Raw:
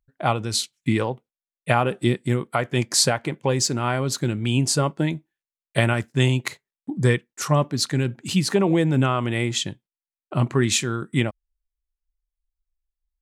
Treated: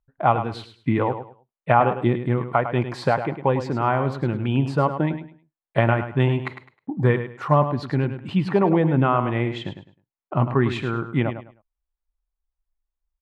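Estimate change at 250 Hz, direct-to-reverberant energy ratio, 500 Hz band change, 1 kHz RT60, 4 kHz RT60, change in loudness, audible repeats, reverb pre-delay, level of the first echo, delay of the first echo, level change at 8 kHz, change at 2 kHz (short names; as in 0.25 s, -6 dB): +0.5 dB, none, +2.0 dB, none, none, 0.0 dB, 3, none, -10.0 dB, 0.104 s, under -25 dB, -1.5 dB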